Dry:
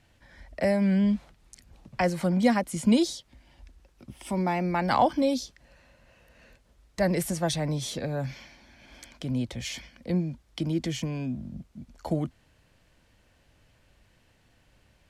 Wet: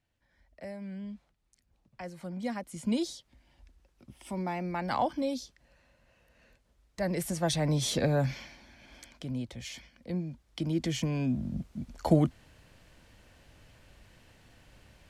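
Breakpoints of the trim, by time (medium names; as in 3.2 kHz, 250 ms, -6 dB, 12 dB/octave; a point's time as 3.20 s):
1.96 s -17.5 dB
3.07 s -7 dB
7.01 s -7 dB
8.03 s +5 dB
9.45 s -7 dB
10.16 s -7 dB
11.59 s +5 dB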